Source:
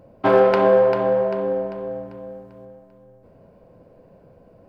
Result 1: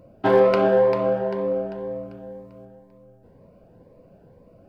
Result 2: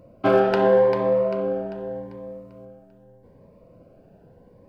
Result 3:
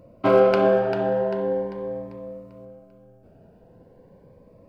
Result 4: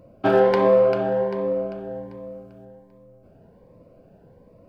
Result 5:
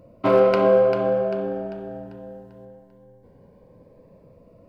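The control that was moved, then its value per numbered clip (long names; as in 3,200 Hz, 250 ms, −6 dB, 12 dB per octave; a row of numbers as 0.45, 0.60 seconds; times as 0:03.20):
phaser whose notches keep moving one way, speed: 2, 0.82, 0.41, 1.3, 0.21 Hertz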